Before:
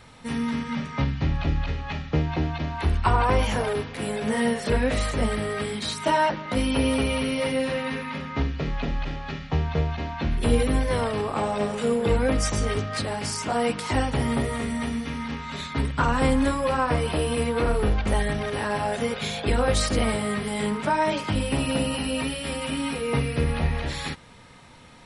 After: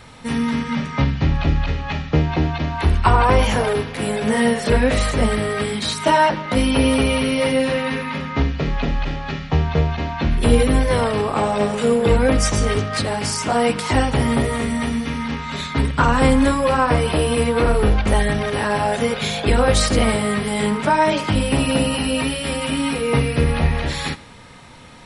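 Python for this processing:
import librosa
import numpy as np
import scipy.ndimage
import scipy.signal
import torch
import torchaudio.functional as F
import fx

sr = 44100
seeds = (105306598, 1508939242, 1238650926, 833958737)

y = fx.echo_feedback(x, sr, ms=83, feedback_pct=42, wet_db=-20.5)
y = F.gain(torch.from_numpy(y), 6.5).numpy()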